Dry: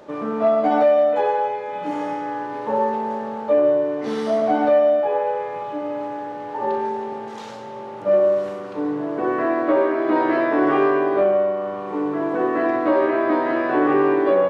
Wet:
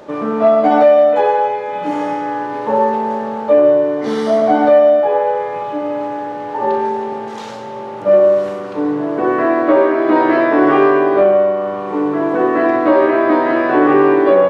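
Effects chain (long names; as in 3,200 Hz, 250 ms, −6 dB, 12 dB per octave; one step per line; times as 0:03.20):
0:03.90–0:05.53: notch filter 2,600 Hz, Q 9.7
level +6.5 dB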